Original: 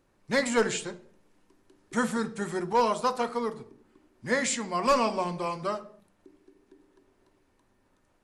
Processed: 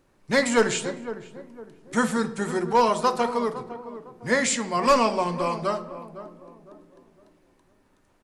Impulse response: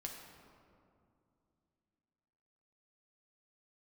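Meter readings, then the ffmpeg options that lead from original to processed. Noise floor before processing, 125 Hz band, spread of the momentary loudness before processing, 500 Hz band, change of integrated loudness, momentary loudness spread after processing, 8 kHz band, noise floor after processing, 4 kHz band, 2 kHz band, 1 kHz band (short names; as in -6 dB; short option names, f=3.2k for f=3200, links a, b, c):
-69 dBFS, +5.0 dB, 10 LU, +4.5 dB, +4.5 dB, 18 LU, +4.5 dB, -64 dBFS, +4.5 dB, +4.5 dB, +4.5 dB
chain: -filter_complex "[0:a]asplit=2[a][b];[b]adelay=507,lowpass=f=990:p=1,volume=-12dB,asplit=2[c][d];[d]adelay=507,lowpass=f=990:p=1,volume=0.39,asplit=2[e][f];[f]adelay=507,lowpass=f=990:p=1,volume=0.39,asplit=2[g][h];[h]adelay=507,lowpass=f=990:p=1,volume=0.39[i];[a][c][e][g][i]amix=inputs=5:normalize=0,asplit=2[j][k];[1:a]atrim=start_sample=2205,afade=t=out:st=0.36:d=0.01,atrim=end_sample=16317[l];[k][l]afir=irnorm=-1:irlink=0,volume=-9.5dB[m];[j][m]amix=inputs=2:normalize=0,volume=3dB"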